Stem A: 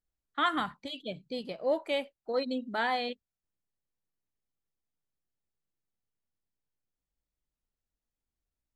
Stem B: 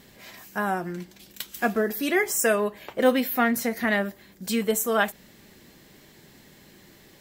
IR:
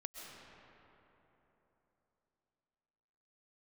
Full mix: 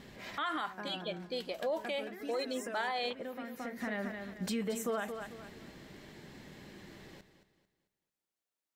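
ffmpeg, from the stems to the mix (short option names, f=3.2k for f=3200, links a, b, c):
-filter_complex "[0:a]highpass=390,volume=1.5dB,asplit=2[a][b];[1:a]aemphasis=mode=reproduction:type=50fm,acompressor=threshold=-29dB:ratio=12,volume=1dB,asplit=2[c][d];[d]volume=-12dB[e];[b]apad=whole_len=317875[f];[c][f]sidechaincompress=threshold=-50dB:ratio=4:attack=6.3:release=793[g];[e]aecho=0:1:222|444|666|888|1110:1|0.35|0.122|0.0429|0.015[h];[a][g][h]amix=inputs=3:normalize=0,alimiter=level_in=3dB:limit=-24dB:level=0:latency=1:release=37,volume=-3dB"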